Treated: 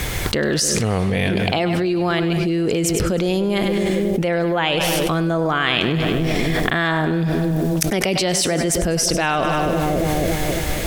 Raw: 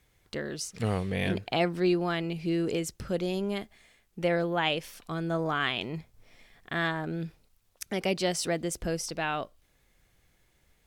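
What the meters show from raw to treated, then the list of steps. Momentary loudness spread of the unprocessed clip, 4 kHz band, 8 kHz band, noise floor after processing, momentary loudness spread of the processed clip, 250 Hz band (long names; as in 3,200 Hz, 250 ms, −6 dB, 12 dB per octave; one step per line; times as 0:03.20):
11 LU, +12.5 dB, +16.5 dB, −22 dBFS, 2 LU, +12.5 dB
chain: echo with a time of its own for lows and highs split 600 Hz, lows 276 ms, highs 100 ms, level −13.5 dB
envelope flattener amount 100%
level +3 dB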